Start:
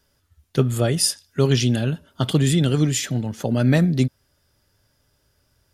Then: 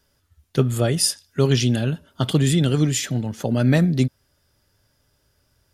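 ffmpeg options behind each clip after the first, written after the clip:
ffmpeg -i in.wav -af anull out.wav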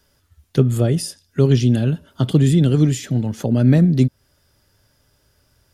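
ffmpeg -i in.wav -filter_complex "[0:a]acrossover=split=490[link_01][link_02];[link_02]acompressor=threshold=-42dB:ratio=2[link_03];[link_01][link_03]amix=inputs=2:normalize=0,volume=4.5dB" out.wav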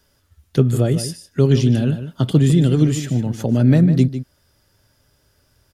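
ffmpeg -i in.wav -filter_complex "[0:a]asplit=2[link_01][link_02];[link_02]adelay=151.6,volume=-11dB,highshelf=frequency=4000:gain=-3.41[link_03];[link_01][link_03]amix=inputs=2:normalize=0" out.wav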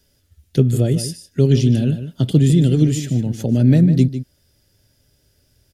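ffmpeg -i in.wav -af "equalizer=frequency=1100:width_type=o:width=1.1:gain=-13,volume=1dB" out.wav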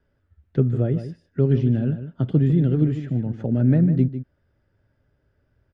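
ffmpeg -i in.wav -af "lowpass=frequency=1400:width_type=q:width=1.7,volume=-5dB" out.wav

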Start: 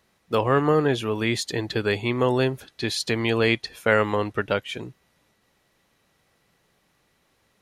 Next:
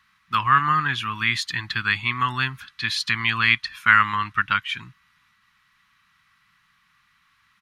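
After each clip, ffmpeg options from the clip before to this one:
ffmpeg -i in.wav -af "firequalizer=gain_entry='entry(180,0);entry(480,-29);entry(1100,13);entry(7300,-1)':delay=0.05:min_phase=1,volume=-3.5dB" out.wav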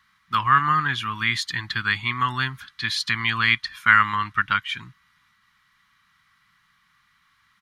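ffmpeg -i in.wav -af "bandreject=frequency=2600:width=9.3" out.wav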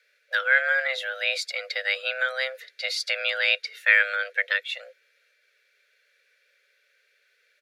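ffmpeg -i in.wav -af "afreqshift=390,volume=-3dB" out.wav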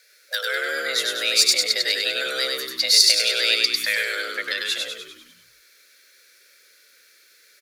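ffmpeg -i in.wav -filter_complex "[0:a]aexciter=amount=2.7:drive=8.6:freq=4200,acrossover=split=490|3000[link_01][link_02][link_03];[link_02]acompressor=threshold=-38dB:ratio=5[link_04];[link_01][link_04][link_03]amix=inputs=3:normalize=0,asplit=2[link_05][link_06];[link_06]asplit=7[link_07][link_08][link_09][link_10][link_11][link_12][link_13];[link_07]adelay=99,afreqshift=-67,volume=-3dB[link_14];[link_08]adelay=198,afreqshift=-134,volume=-8.5dB[link_15];[link_09]adelay=297,afreqshift=-201,volume=-14dB[link_16];[link_10]adelay=396,afreqshift=-268,volume=-19.5dB[link_17];[link_11]adelay=495,afreqshift=-335,volume=-25.1dB[link_18];[link_12]adelay=594,afreqshift=-402,volume=-30.6dB[link_19];[link_13]adelay=693,afreqshift=-469,volume=-36.1dB[link_20];[link_14][link_15][link_16][link_17][link_18][link_19][link_20]amix=inputs=7:normalize=0[link_21];[link_05][link_21]amix=inputs=2:normalize=0,volume=5.5dB" out.wav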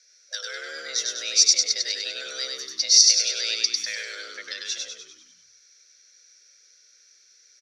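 ffmpeg -i in.wav -af "lowpass=frequency=5800:width_type=q:width=14,volume=-11.5dB" out.wav

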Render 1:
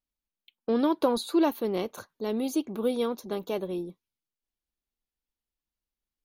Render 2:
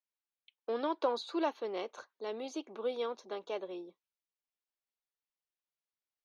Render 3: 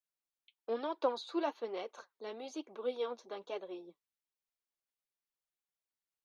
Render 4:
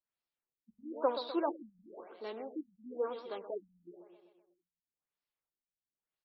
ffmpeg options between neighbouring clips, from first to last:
ffmpeg -i in.wav -filter_complex "[0:a]lowpass=frequency=6200:width_type=q:width=2.8,acrossover=split=370 3700:gain=0.0631 1 0.141[link_01][link_02][link_03];[link_01][link_02][link_03]amix=inputs=3:normalize=0,volume=-4.5dB" out.wav
ffmpeg -i in.wav -af "flanger=delay=1.2:depth=7.9:regen=43:speed=1.1:shape=triangular,volume=1dB" out.wav
ffmpeg -i in.wav -filter_complex "[0:a]asplit=2[link_01][link_02];[link_02]aecho=0:1:126|252|378|504|630|756|882:0.299|0.173|0.1|0.0582|0.0338|0.0196|0.0114[link_03];[link_01][link_03]amix=inputs=2:normalize=0,afftfilt=real='re*lt(b*sr/1024,200*pow(5700/200,0.5+0.5*sin(2*PI*1*pts/sr)))':imag='im*lt(b*sr/1024,200*pow(5700/200,0.5+0.5*sin(2*PI*1*pts/sr)))':win_size=1024:overlap=0.75,volume=1.5dB" out.wav

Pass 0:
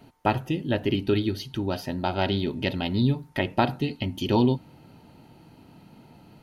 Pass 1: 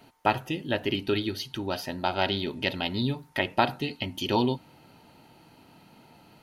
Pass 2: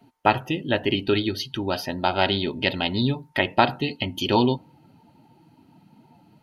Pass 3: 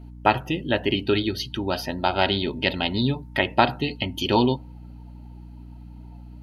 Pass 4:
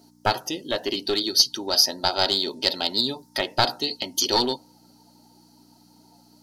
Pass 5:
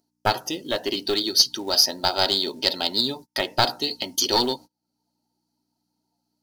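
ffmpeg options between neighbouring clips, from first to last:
ffmpeg -i in.wav -af "lowshelf=frequency=420:gain=-10.5,volume=2.5dB" out.wav
ffmpeg -i in.wav -af "afftdn=noise_reduction=14:noise_floor=-47,volume=5dB" out.wav
ffmpeg -i in.wav -af "aeval=exprs='val(0)+0.01*(sin(2*PI*60*n/s)+sin(2*PI*2*60*n/s)/2+sin(2*PI*3*60*n/s)/3+sin(2*PI*4*60*n/s)/4+sin(2*PI*5*60*n/s)/5)':channel_layout=same" out.wav
ffmpeg -i in.wav -filter_complex "[0:a]highpass=360,highshelf=frequency=3700:width_type=q:width=3:gain=12.5,acrossover=split=4000[link_01][link_02];[link_01]aeval=exprs='clip(val(0),-1,0.0794)':channel_layout=same[link_03];[link_03][link_02]amix=inputs=2:normalize=0" out.wav
ffmpeg -i in.wav -filter_complex "[0:a]asplit=2[link_01][link_02];[link_02]acompressor=mode=upward:threshold=-28dB:ratio=2.5,volume=-1dB[link_03];[link_01][link_03]amix=inputs=2:normalize=0,agate=range=-31dB:threshold=-33dB:ratio=16:detection=peak,acrusher=bits=6:mode=log:mix=0:aa=0.000001,volume=-5dB" out.wav

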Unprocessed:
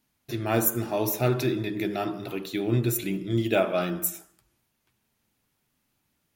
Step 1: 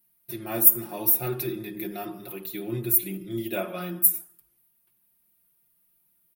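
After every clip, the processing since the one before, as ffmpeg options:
ffmpeg -i in.wav -af "aecho=1:1:5.6:0.9,aexciter=amount=5.3:drive=8.4:freq=9500,volume=-9dB" out.wav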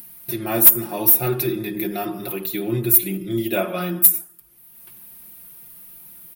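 ffmpeg -i in.wav -filter_complex "[0:a]asplit=2[link_01][link_02];[link_02]acompressor=mode=upward:threshold=-28dB:ratio=2.5,volume=3dB[link_03];[link_01][link_03]amix=inputs=2:normalize=0,asoftclip=type=tanh:threshold=-1dB" out.wav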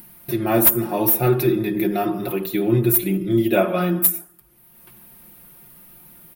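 ffmpeg -i in.wav -af "highshelf=frequency=2600:gain=-10,volume=5.5dB" out.wav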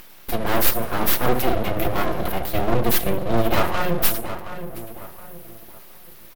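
ffmpeg -i in.wav -filter_complex "[0:a]aeval=exprs='(tanh(4.47*val(0)+0.45)-tanh(0.45))/4.47':channel_layout=same,asplit=2[link_01][link_02];[link_02]adelay=720,lowpass=frequency=1900:poles=1,volume=-10.5dB,asplit=2[link_03][link_04];[link_04]adelay=720,lowpass=frequency=1900:poles=1,volume=0.39,asplit=2[link_05][link_06];[link_06]adelay=720,lowpass=frequency=1900:poles=1,volume=0.39,asplit=2[link_07][link_08];[link_08]adelay=720,lowpass=frequency=1900:poles=1,volume=0.39[link_09];[link_01][link_03][link_05][link_07][link_09]amix=inputs=5:normalize=0,aeval=exprs='abs(val(0))':channel_layout=same,volume=4dB" out.wav

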